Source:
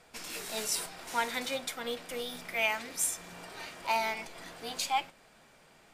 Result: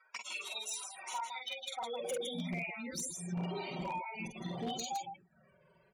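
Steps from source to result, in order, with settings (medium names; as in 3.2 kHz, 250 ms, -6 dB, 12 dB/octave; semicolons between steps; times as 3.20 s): reverb removal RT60 0.75 s; hum notches 50/100/150/200/250/300/350 Hz; spectral gate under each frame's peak -10 dB strong; gate -58 dBFS, range -14 dB; bass shelf 280 Hz +8.5 dB; comb 5.3 ms, depth 69%; compression 12:1, threshold -45 dBFS, peak gain reduction 23 dB; loudspeakers at several distances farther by 16 m -3 dB, 55 m -6 dB; touch-sensitive flanger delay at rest 2.2 ms, full sweep at -44.5 dBFS; high-pass sweep 1.2 kHz -> 89 Hz, 1.60–2.90 s; wavefolder -39.5 dBFS; trim +9 dB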